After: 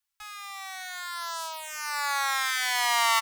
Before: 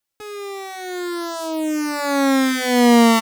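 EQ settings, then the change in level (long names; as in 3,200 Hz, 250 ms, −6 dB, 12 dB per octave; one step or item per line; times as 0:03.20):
inverse Chebyshev band-stop filter 180–410 Hz, stop band 60 dB
−3.0 dB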